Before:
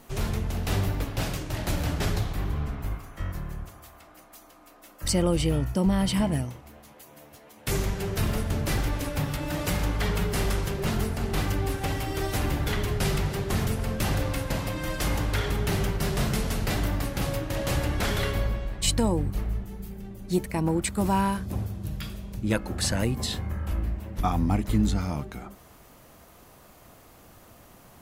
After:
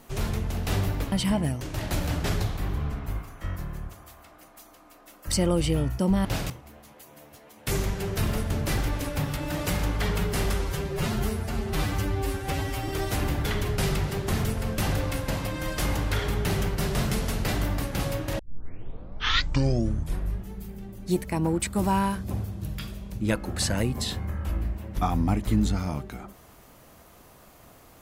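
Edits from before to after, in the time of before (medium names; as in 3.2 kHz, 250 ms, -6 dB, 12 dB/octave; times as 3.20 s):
1.12–1.37 s: swap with 6.01–6.50 s
10.54–12.10 s: stretch 1.5×
17.61 s: tape start 2.10 s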